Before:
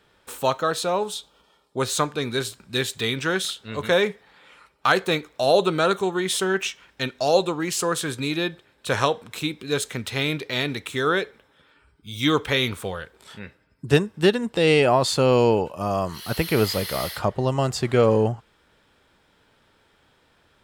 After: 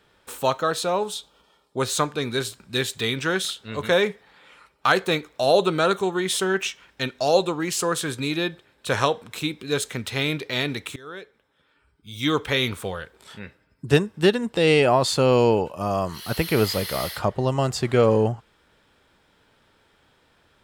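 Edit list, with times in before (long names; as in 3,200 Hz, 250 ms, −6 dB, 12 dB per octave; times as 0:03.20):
0:10.96–0:12.69: fade in, from −23.5 dB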